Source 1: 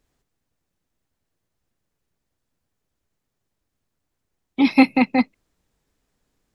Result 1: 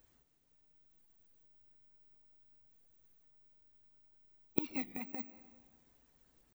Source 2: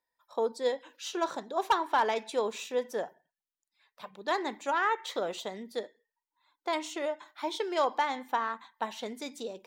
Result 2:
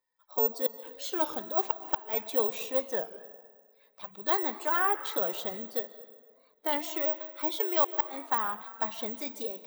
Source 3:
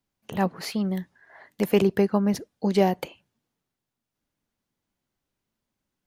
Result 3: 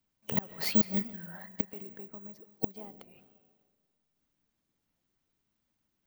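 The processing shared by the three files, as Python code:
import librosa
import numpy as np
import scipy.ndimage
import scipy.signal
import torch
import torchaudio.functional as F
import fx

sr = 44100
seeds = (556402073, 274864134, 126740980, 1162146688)

y = fx.spec_quant(x, sr, step_db=15)
y = fx.gate_flip(y, sr, shuts_db=-18.0, range_db=-28)
y = fx.rev_freeverb(y, sr, rt60_s=1.7, hf_ratio=0.6, predelay_ms=100, drr_db=14.5)
y = (np.kron(scipy.signal.resample_poly(y, 1, 2), np.eye(2)[0]) * 2)[:len(y)]
y = fx.record_warp(y, sr, rpm=33.33, depth_cents=160.0)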